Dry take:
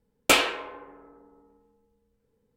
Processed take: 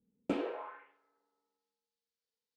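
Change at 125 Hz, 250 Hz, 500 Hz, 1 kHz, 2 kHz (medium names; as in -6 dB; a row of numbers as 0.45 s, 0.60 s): -6.0 dB, -4.0 dB, -9.5 dB, -15.5 dB, -24.5 dB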